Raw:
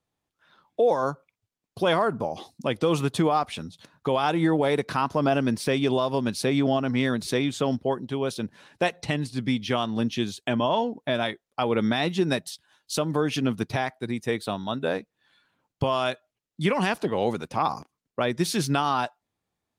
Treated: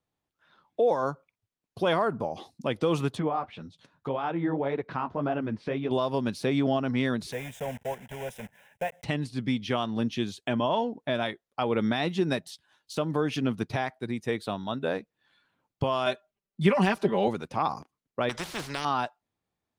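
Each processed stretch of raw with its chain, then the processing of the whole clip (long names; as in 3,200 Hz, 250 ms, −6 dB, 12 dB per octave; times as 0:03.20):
0:03.15–0:05.91: treble cut that deepens with the level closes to 2,300 Hz, closed at −23.5 dBFS + flanger 1.8 Hz, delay 2.1 ms, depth 9.9 ms, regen −37%
0:07.32–0:09.04: one scale factor per block 3 bits + low-shelf EQ 240 Hz −5 dB + phaser with its sweep stopped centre 1,200 Hz, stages 6
0:16.06–0:17.28: comb filter 5.1 ms, depth 95% + one half of a high-frequency compander decoder only
0:18.29–0:18.85: low-pass filter 3,300 Hz 6 dB per octave + every bin compressed towards the loudest bin 4 to 1
whole clip: de-essing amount 65%; high-shelf EQ 5,700 Hz −6 dB; level −2.5 dB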